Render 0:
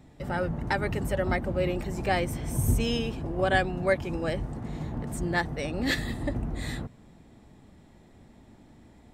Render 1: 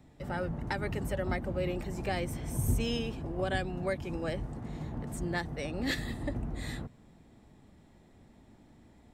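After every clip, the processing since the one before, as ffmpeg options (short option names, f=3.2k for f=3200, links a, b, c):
-filter_complex "[0:a]acrossover=split=360|3000[a][b][c];[b]acompressor=threshold=-27dB:ratio=6[d];[a][d][c]amix=inputs=3:normalize=0,volume=-4.5dB"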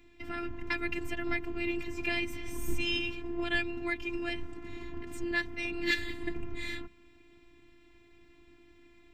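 -af "afftfilt=real='hypot(re,im)*cos(PI*b)':imag='0':win_size=512:overlap=0.75,equalizer=f=160:t=o:w=0.67:g=5,equalizer=f=630:t=o:w=0.67:g=-11,equalizer=f=2.5k:t=o:w=0.67:g=11,equalizer=f=10k:t=o:w=0.67:g=-11,volume=4.5dB"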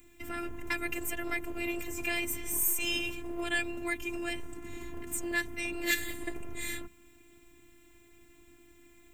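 -filter_complex "[0:a]acrossover=split=430[a][b];[a]volume=35dB,asoftclip=hard,volume=-35dB[c];[b]aexciter=amount=9.6:drive=3.2:freq=6.8k[d];[c][d]amix=inputs=2:normalize=0"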